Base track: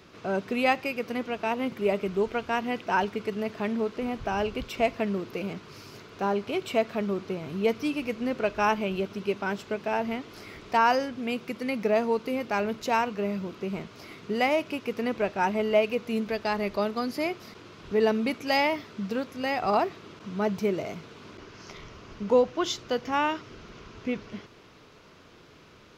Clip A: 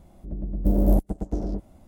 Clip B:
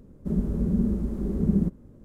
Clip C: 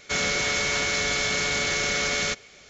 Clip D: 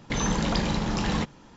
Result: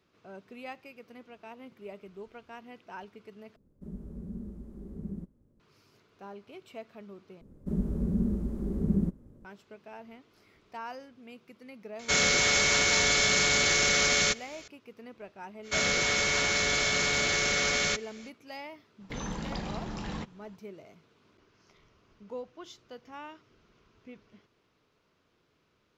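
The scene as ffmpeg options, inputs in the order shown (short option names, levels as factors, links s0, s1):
-filter_complex "[2:a]asplit=2[s0][s1];[3:a]asplit=2[s2][s3];[0:a]volume=0.119[s4];[s2]highshelf=f=5100:g=5[s5];[4:a]highshelf=f=4600:g=-4[s6];[s4]asplit=3[s7][s8][s9];[s7]atrim=end=3.564[s10];[s0]atrim=end=2.04,asetpts=PTS-STARTPTS,volume=0.15[s11];[s8]atrim=start=5.596:end=7.414[s12];[s1]atrim=end=2.04,asetpts=PTS-STARTPTS,volume=0.596[s13];[s9]atrim=start=9.446[s14];[s5]atrim=end=2.69,asetpts=PTS-STARTPTS,volume=0.944,afade=t=in:d=0.004:c=hsin,afade=t=out:st=2.686:d=0.004:c=hsin,adelay=11990[s15];[s3]atrim=end=2.69,asetpts=PTS-STARTPTS,volume=0.794,afade=t=in:d=0.05,afade=t=out:st=2.64:d=0.05,adelay=15620[s16];[s6]atrim=end=1.56,asetpts=PTS-STARTPTS,volume=0.299,afade=t=in:d=0.004:c=hsin,afade=t=out:st=1.556:d=0.004:c=hsin,adelay=19000[s17];[s10][s11]acrossfade=d=0.004:c1=hsin:c2=hsin[s18];[s18][s12]acrossfade=d=0.004:c1=hsin:c2=hsin[s19];[s19][s13]acrossfade=d=0.004:c1=hsin:c2=hsin[s20];[s20][s14]acrossfade=d=0.004:c1=hsin:c2=hsin[s21];[s21][s15][s16][s17]amix=inputs=4:normalize=0"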